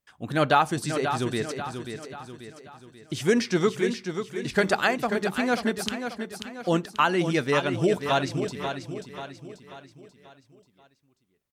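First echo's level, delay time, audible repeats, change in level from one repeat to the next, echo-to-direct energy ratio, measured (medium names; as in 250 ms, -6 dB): -8.0 dB, 537 ms, 5, -6.5 dB, -7.0 dB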